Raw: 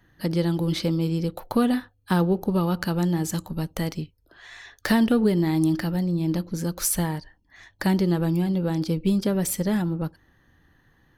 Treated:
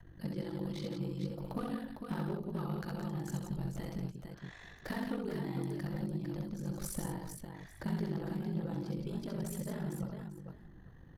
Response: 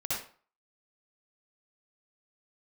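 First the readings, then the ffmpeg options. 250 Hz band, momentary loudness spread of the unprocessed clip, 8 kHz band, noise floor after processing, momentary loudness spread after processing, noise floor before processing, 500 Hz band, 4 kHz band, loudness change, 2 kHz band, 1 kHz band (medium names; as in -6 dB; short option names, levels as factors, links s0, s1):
-15.0 dB, 9 LU, -18.0 dB, -55 dBFS, 10 LU, -63 dBFS, -15.0 dB, -17.0 dB, -15.0 dB, -15.0 dB, -14.5 dB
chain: -filter_complex "[0:a]acrossover=split=860[s0][s1];[s0]acompressor=threshold=0.0355:ratio=6[s2];[s2][s1]amix=inputs=2:normalize=0,tiltshelf=f=830:g=7.5,acompressor=mode=upward:threshold=0.02:ratio=2.5,flanger=delay=0.9:depth=9.7:regen=-33:speed=1.2:shape=triangular,aeval=exprs='val(0)*sin(2*PI*24*n/s)':c=same,adynamicequalizer=threshold=0.00562:dfrequency=260:dqfactor=1.4:tfrequency=260:tqfactor=1.4:attack=5:release=100:ratio=0.375:range=2.5:mode=cutabove:tftype=bell,volume=13.3,asoftclip=hard,volume=0.075,aecho=1:1:67|169|454|848:0.668|0.501|0.501|0.1,volume=0.473"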